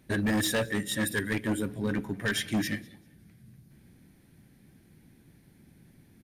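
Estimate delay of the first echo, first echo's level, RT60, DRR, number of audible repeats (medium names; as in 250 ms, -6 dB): 196 ms, -24.0 dB, no reverb, no reverb, 1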